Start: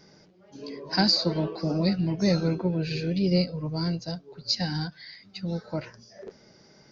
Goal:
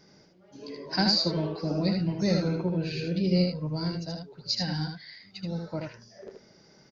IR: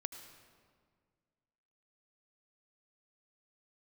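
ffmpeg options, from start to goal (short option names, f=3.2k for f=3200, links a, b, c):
-af "aecho=1:1:78:0.596,volume=-3dB"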